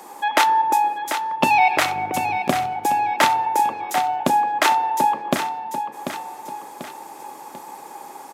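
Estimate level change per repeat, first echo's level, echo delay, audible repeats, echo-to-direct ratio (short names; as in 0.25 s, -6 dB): -6.5 dB, -8.5 dB, 0.741 s, 3, -7.5 dB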